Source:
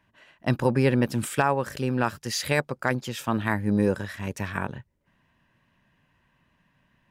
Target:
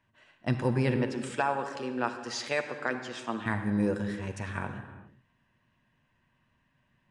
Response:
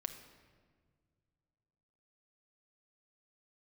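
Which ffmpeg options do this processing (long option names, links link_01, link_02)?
-filter_complex "[0:a]asettb=1/sr,asplit=3[link_01][link_02][link_03];[link_01]atrim=end=0.964[link_04];[link_02]atrim=start=0.96:end=3.46,asetpts=PTS-STARTPTS,afade=type=in:duration=0.004:curve=qsin,afade=type=out:start_time=2.496:duration=0.004:curve=qsin,acrossover=split=230 7900:gain=0.112 1 0.141[link_05][link_06][link_07];[link_05][link_06][link_07]amix=inputs=3:normalize=0[link_08];[link_03]atrim=start=3.456[link_09];[link_04][link_08]acrossfade=duration=0.004:curve1=hsin:curve2=qsin[link_10];[link_10][link_09]acrossfade=duration=0.004:curve1=qsin:curve2=hsin,aresample=22050,aresample=44100[link_11];[1:a]atrim=start_sample=2205,afade=type=out:start_time=0.33:duration=0.01,atrim=end_sample=14994,asetrate=29106,aresample=44100[link_12];[link_11][link_12]afir=irnorm=-1:irlink=0,volume=-6dB"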